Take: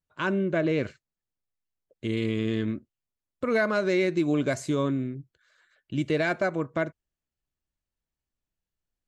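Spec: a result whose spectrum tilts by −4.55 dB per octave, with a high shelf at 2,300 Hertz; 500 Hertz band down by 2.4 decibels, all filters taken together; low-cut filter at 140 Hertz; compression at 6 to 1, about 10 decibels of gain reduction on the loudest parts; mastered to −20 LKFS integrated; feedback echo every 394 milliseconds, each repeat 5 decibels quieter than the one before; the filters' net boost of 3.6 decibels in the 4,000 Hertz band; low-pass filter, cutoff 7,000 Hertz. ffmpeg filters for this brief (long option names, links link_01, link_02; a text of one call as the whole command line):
ffmpeg -i in.wav -af "highpass=140,lowpass=7000,equalizer=frequency=500:width_type=o:gain=-3,highshelf=frequency=2300:gain=-5,equalizer=frequency=4000:width_type=o:gain=9,acompressor=threshold=-33dB:ratio=6,aecho=1:1:394|788|1182|1576|1970|2364|2758:0.562|0.315|0.176|0.0988|0.0553|0.031|0.0173,volume=18dB" out.wav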